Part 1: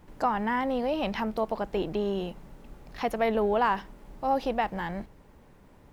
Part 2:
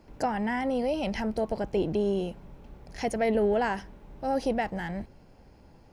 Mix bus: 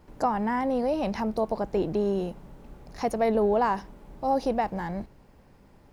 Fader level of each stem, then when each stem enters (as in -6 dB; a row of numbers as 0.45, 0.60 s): -2.5, -5.5 dB; 0.00, 0.00 s